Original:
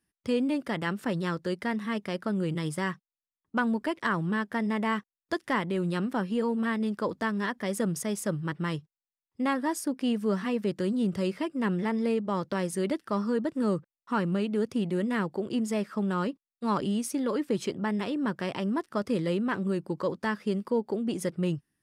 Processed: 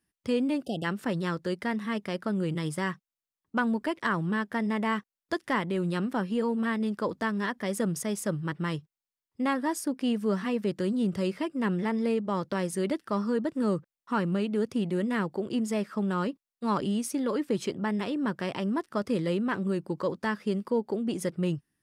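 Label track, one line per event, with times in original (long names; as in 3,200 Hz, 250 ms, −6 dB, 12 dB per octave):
0.640000	0.840000	time-frequency box erased 830–2,600 Hz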